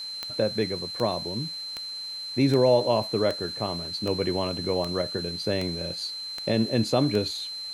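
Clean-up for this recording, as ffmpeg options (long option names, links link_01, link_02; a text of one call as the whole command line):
ffmpeg -i in.wav -af "adeclick=threshold=4,bandreject=frequency=4100:width=30,afwtdn=0.0032" out.wav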